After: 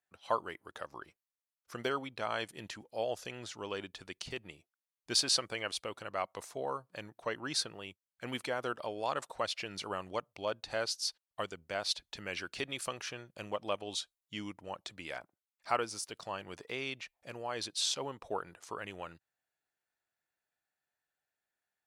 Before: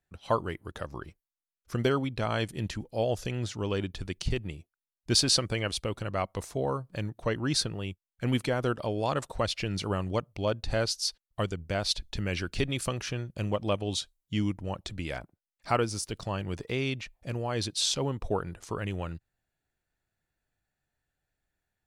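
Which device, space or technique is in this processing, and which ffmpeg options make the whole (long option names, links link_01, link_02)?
filter by subtraction: -filter_complex "[0:a]asplit=2[link_01][link_02];[link_02]lowpass=930,volume=-1[link_03];[link_01][link_03]amix=inputs=2:normalize=0,volume=-5dB"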